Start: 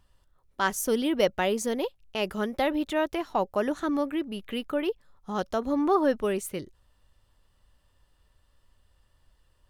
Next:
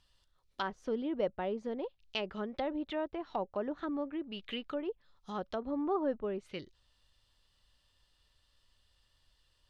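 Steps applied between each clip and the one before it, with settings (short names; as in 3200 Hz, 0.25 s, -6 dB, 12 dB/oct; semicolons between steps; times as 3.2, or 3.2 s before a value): treble ducked by the level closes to 900 Hz, closed at -24.5 dBFS; bell 4100 Hz +14.5 dB 1.8 oct; gain -9 dB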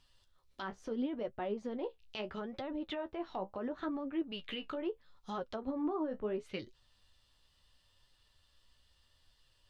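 limiter -31.5 dBFS, peak gain reduction 11 dB; flange 0.74 Hz, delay 7.2 ms, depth 9.4 ms, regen +41%; gain +5.5 dB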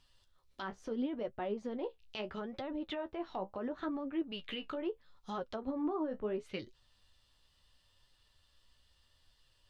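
nothing audible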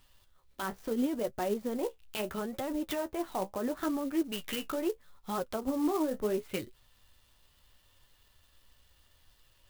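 clock jitter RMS 0.039 ms; gain +5.5 dB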